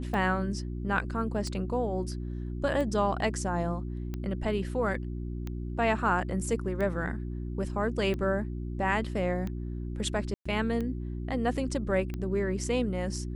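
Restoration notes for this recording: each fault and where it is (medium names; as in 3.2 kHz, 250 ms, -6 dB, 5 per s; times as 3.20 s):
hum 60 Hz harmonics 6 -35 dBFS
tick 45 rpm -23 dBFS
10.34–10.46 s: dropout 115 ms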